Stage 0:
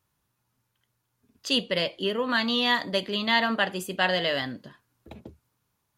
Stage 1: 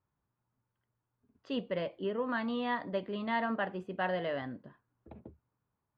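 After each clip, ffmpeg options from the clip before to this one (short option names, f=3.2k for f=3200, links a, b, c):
-af "lowpass=1.4k,volume=-6dB"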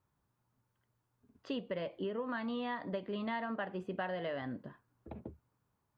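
-af "acompressor=threshold=-39dB:ratio=6,volume=4dB"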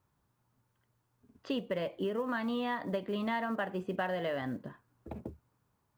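-af "acrusher=bits=9:mode=log:mix=0:aa=0.000001,volume=4dB"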